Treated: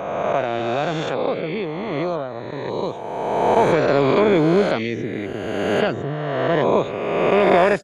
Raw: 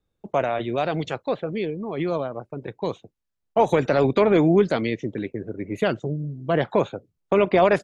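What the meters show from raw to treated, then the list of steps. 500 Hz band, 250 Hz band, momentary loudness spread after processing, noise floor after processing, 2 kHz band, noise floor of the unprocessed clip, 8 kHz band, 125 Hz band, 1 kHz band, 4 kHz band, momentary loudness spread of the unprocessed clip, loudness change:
+3.5 dB, +2.0 dB, 11 LU, -30 dBFS, +5.5 dB, -78 dBFS, no reading, +1.5 dB, +5.0 dB, +5.5 dB, 14 LU, +3.0 dB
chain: reverse spectral sustain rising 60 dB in 1.95 s; trim -1 dB

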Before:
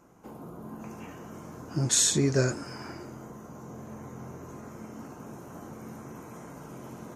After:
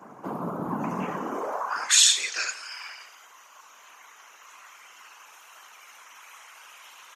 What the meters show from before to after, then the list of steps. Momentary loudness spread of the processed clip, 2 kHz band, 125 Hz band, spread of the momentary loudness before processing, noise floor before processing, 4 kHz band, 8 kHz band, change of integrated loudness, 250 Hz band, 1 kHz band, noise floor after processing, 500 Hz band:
21 LU, +9.0 dB, -10.5 dB, 21 LU, -46 dBFS, +10.0 dB, +4.5 dB, +2.5 dB, -2.5 dB, +10.5 dB, -52 dBFS, -3.0 dB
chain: peaking EQ 1 kHz +14 dB 2.7 oct; comb 4.8 ms; whisper effect; high-pass sweep 180 Hz -> 2.9 kHz, 1.16–2.01 s; delay 168 ms -18 dB

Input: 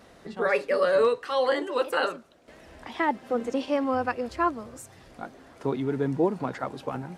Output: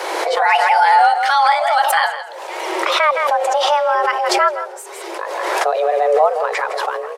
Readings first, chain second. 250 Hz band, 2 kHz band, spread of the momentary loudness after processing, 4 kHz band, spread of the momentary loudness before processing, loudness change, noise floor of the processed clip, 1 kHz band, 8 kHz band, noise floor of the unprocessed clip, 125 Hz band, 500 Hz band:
-6.0 dB, +14.0 dB, 14 LU, +16.0 dB, 19 LU, +11.5 dB, -32 dBFS, +17.5 dB, +19.5 dB, -53 dBFS, under -25 dB, +7.5 dB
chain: frequency shift +300 Hz; delay 164 ms -12.5 dB; swell ahead of each attack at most 27 dB/s; trim +9 dB

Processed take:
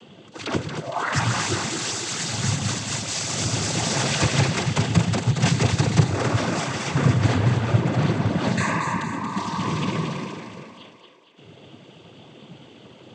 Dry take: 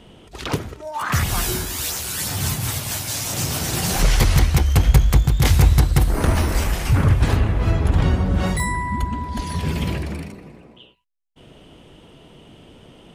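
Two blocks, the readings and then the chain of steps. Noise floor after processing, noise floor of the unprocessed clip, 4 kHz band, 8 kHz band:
-49 dBFS, -48 dBFS, +0.5 dB, -1.5 dB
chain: two-band feedback delay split 330 Hz, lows 108 ms, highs 230 ms, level -5.5 dB; noise-vocoded speech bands 16

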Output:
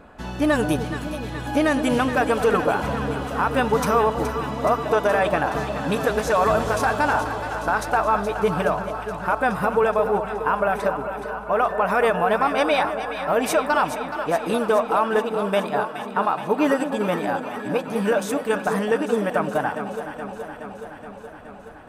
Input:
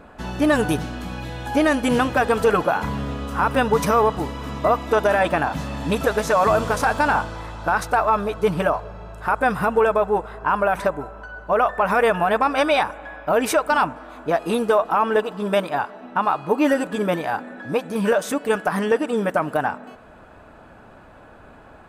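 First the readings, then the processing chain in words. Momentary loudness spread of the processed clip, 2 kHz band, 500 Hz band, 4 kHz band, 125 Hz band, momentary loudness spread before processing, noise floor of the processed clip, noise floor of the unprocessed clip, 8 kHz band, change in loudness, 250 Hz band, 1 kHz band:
10 LU, -1.0 dB, -1.0 dB, -1.0 dB, -1.0 dB, 9 LU, -39 dBFS, -46 dBFS, -1.0 dB, -1.0 dB, -1.0 dB, -1.0 dB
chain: echo whose repeats swap between lows and highs 211 ms, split 810 Hz, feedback 83%, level -8 dB; trim -2 dB

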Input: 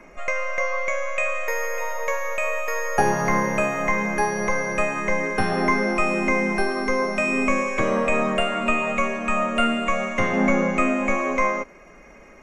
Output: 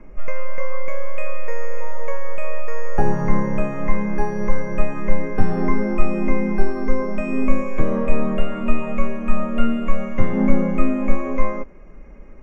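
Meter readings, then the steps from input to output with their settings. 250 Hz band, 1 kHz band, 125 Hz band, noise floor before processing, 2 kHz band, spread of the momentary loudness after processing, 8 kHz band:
+3.0 dB, -6.0 dB, +6.5 dB, -47 dBFS, -9.5 dB, 10 LU, under -15 dB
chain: tilt EQ -4 dB/octave; band-stop 690 Hz, Q 12; trim -5.5 dB

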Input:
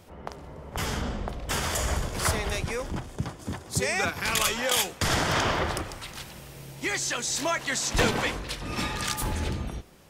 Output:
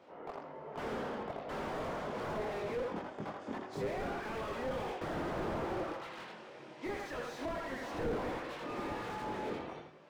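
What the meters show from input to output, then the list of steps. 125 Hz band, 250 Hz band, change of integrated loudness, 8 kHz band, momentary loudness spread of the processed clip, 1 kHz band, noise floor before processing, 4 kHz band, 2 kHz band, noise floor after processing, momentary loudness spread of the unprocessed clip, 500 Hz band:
-15.0 dB, -7.0 dB, -12.0 dB, -29.5 dB, 9 LU, -8.0 dB, -46 dBFS, -20.5 dB, -14.5 dB, -52 dBFS, 14 LU, -5.0 dB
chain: high-pass 380 Hz 12 dB/octave; on a send: filtered feedback delay 83 ms, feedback 26%, low-pass 4.8 kHz, level -5 dB; on the sum: chorus voices 6, 0.35 Hz, delay 23 ms, depth 4.3 ms; tape spacing loss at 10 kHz 32 dB; slew-rate limiter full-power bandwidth 7.1 Hz; trim +4 dB

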